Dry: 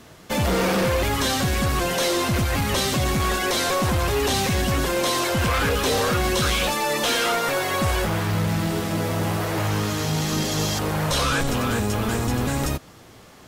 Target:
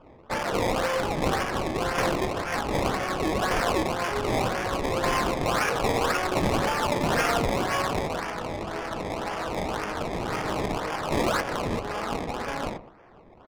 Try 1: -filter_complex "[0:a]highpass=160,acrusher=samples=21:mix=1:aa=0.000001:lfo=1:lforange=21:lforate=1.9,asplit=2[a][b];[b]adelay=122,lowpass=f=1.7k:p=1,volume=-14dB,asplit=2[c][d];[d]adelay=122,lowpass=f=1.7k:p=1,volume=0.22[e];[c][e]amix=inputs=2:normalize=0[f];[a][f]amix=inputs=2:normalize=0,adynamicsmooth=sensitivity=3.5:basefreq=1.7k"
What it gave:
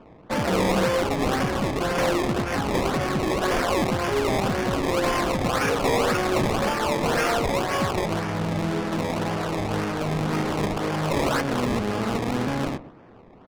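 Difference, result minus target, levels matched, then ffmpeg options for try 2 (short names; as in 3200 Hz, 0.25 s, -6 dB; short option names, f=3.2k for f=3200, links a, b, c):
125 Hz band +2.5 dB
-filter_complex "[0:a]highpass=610,acrusher=samples=21:mix=1:aa=0.000001:lfo=1:lforange=21:lforate=1.9,asplit=2[a][b];[b]adelay=122,lowpass=f=1.7k:p=1,volume=-14dB,asplit=2[c][d];[d]adelay=122,lowpass=f=1.7k:p=1,volume=0.22[e];[c][e]amix=inputs=2:normalize=0[f];[a][f]amix=inputs=2:normalize=0,adynamicsmooth=sensitivity=3.5:basefreq=1.7k"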